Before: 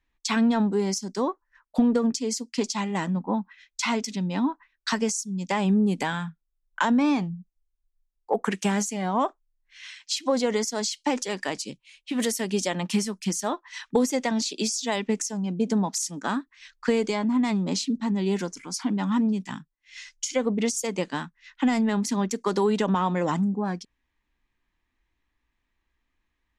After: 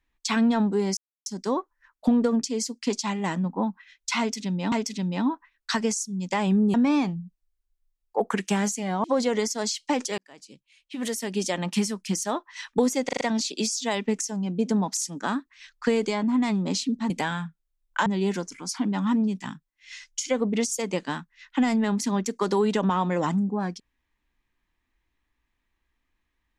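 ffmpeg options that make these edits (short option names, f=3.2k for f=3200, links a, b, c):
-filter_complex "[0:a]asplit=12[a][b][c][d][e][f][g][h][i][j][k][l];[a]atrim=end=0.97,asetpts=PTS-STARTPTS,afade=t=out:st=0.966:d=0.004:c=hsin,apad=pad_dur=0.29[m];[b]atrim=start=0.97:end=4.432,asetpts=PTS-STARTPTS,afade=t=in:d=0.004:c=hsin[n];[c]atrim=start=3.898:end=5.922[o];[d]atrim=start=6.878:end=9.182[p];[e]atrim=start=10.208:end=11.35,asetpts=PTS-STARTPTS,afade=t=out:st=1.138:d=0.004:c=hsin[q];[f]atrim=start=11.35:end=14.262,asetpts=PTS-STARTPTS,afade=t=in:d=1.41[r];[g]atrim=start=14.218:end=14.262[s];[h]atrim=start=14.218:end=14.262[t];[i]atrim=start=14.218:end=14.262[u];[j]atrim=start=14.218:end=18.112[v];[k]atrim=start=5.918:end=6.882[w];[l]atrim=start=18.108[x];[m][n]concat=n=2:v=0:a=1[y];[y][o]acrossfade=d=0.004:c1=hsin:c2=hsin[z];[z][p]acrossfade=d=0.004:c1=hsin:c2=hsin[aa];[q][r]concat=n=2:v=0:a=1[ab];[aa][ab]acrossfade=d=0.004:c1=hsin:c2=hsin[ac];[ac][s]acrossfade=d=0.004:c1=hsin:c2=hsin[ad];[ad][t]acrossfade=d=0.004:c1=hsin:c2=hsin[ae];[ae][u]acrossfade=d=0.004:c1=hsin:c2=hsin[af];[af][v]acrossfade=d=0.004:c1=hsin:c2=hsin[ag];[ag][w]acrossfade=d=0.004:c1=hsin:c2=hsin[ah];[ah][x]acrossfade=d=0.004:c1=hsin:c2=hsin"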